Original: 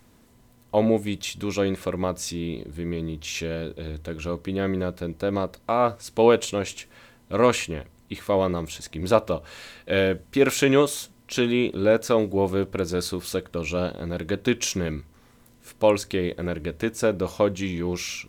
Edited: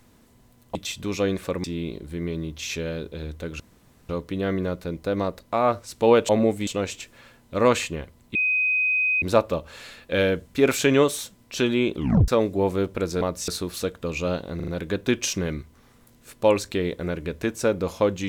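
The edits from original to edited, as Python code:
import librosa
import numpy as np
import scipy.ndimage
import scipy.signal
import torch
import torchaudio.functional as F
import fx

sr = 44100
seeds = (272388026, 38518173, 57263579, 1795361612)

y = fx.edit(x, sr, fx.move(start_s=0.75, length_s=0.38, to_s=6.45),
    fx.move(start_s=2.02, length_s=0.27, to_s=12.99),
    fx.insert_room_tone(at_s=4.25, length_s=0.49),
    fx.bleep(start_s=8.13, length_s=0.87, hz=2510.0, db=-19.0),
    fx.tape_stop(start_s=11.74, length_s=0.32),
    fx.stutter(start_s=14.07, slice_s=0.04, count=4), tone=tone)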